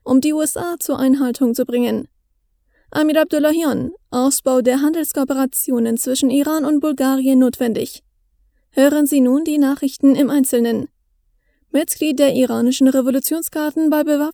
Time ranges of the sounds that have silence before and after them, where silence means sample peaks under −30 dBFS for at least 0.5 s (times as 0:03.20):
0:02.93–0:07.97
0:08.77–0:10.86